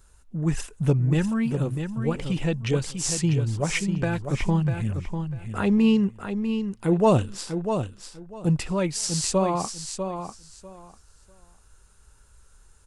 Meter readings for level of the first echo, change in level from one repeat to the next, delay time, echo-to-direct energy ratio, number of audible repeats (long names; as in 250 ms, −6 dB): −7.5 dB, −14.5 dB, 646 ms, −7.5 dB, 2